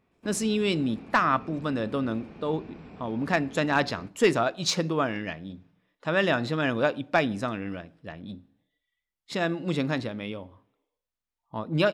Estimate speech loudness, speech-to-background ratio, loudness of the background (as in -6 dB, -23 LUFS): -27.5 LUFS, 19.0 dB, -46.5 LUFS